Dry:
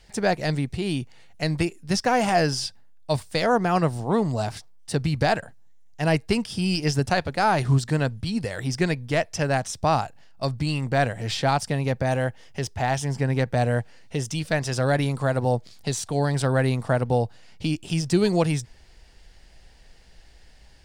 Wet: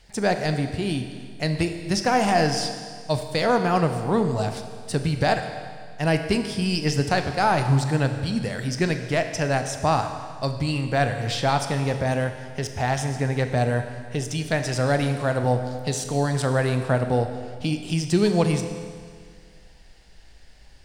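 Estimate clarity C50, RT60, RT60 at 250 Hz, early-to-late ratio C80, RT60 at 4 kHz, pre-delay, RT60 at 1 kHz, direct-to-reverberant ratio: 8.0 dB, 1.9 s, 1.9 s, 9.0 dB, 1.9 s, 24 ms, 1.9 s, 6.5 dB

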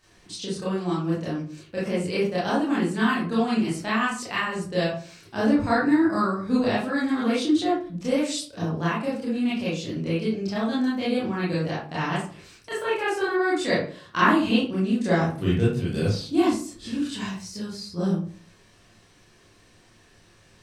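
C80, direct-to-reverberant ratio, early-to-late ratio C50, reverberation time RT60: 8.0 dB, −9.0 dB, 1.5 dB, 0.45 s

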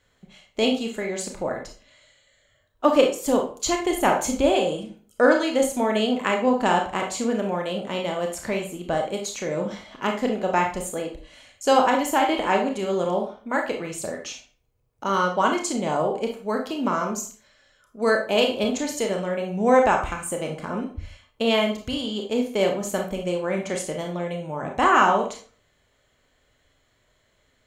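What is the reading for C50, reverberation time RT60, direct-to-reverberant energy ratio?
7.0 dB, 0.40 s, 2.0 dB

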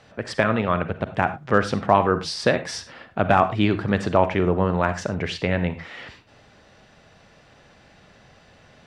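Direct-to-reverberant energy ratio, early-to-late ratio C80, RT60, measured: 10.5 dB, 16.5 dB, non-exponential decay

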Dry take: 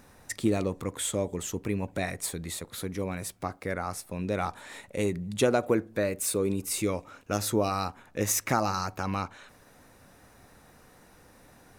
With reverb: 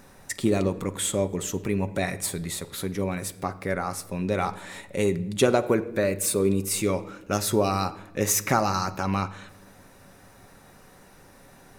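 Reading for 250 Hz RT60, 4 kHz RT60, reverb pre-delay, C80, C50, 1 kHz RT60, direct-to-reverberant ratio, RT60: 1.6 s, 0.70 s, 5 ms, 18.5 dB, 16.5 dB, 0.80 s, 9.0 dB, 0.95 s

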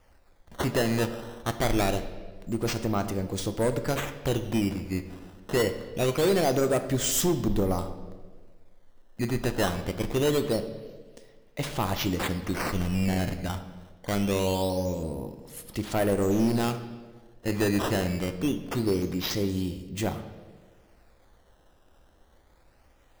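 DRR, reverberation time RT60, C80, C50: 8.5 dB, 1.5 s, 12.5 dB, 11.0 dB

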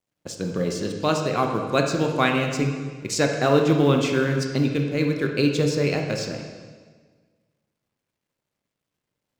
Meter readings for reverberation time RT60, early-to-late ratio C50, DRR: 1.5 s, 4.5 dB, 2.5 dB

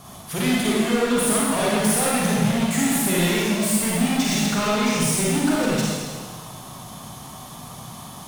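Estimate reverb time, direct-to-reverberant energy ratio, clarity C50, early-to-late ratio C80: 1.6 s, −6.0 dB, −4.0 dB, −1.0 dB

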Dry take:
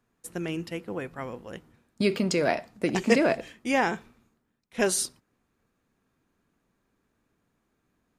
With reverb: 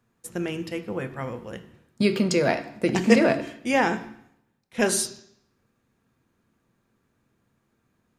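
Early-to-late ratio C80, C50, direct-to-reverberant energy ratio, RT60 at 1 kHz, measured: 16.0 dB, 13.5 dB, 9.0 dB, 0.70 s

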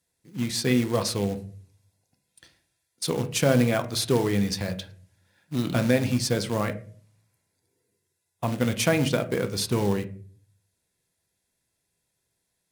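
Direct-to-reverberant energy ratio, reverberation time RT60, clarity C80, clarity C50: 8.5 dB, 0.45 s, 19.0 dB, 15.0 dB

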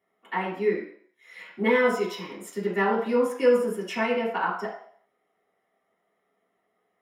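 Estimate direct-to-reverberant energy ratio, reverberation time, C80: −7.5 dB, 0.60 s, 8.5 dB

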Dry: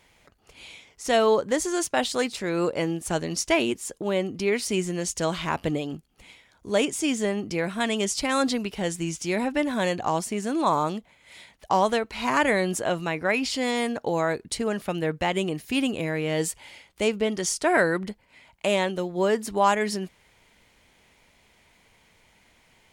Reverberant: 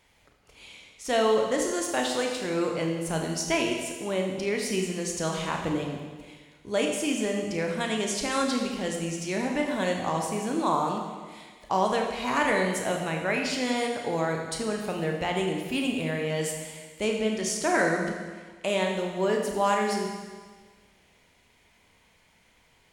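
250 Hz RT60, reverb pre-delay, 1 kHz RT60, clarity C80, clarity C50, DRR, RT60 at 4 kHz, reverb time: 1.5 s, 24 ms, 1.5 s, 5.0 dB, 3.5 dB, 1.5 dB, 1.5 s, 1.5 s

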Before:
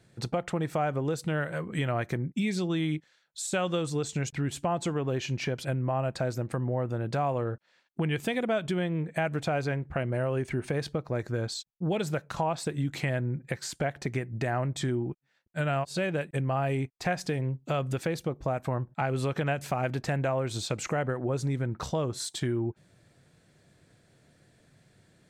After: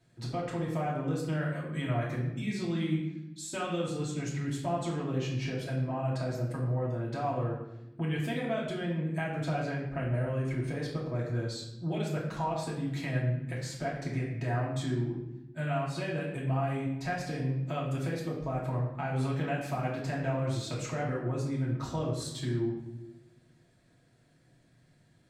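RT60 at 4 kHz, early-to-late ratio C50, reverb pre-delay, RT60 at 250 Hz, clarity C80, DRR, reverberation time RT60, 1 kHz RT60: 0.65 s, 3.5 dB, 3 ms, 1.5 s, 6.0 dB, −5.5 dB, 0.95 s, 0.90 s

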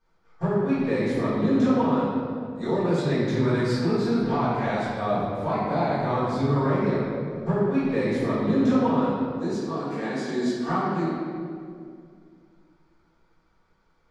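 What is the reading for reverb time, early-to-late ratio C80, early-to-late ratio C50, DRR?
2.3 s, 0.0 dB, −2.5 dB, −14.0 dB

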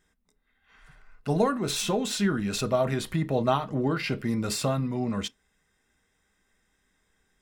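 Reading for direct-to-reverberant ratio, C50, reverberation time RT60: 10.0 dB, 29.5 dB, non-exponential decay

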